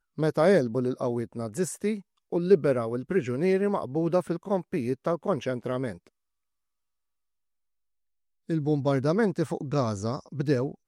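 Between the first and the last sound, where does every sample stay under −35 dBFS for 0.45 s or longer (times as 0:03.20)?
0:05.95–0:08.49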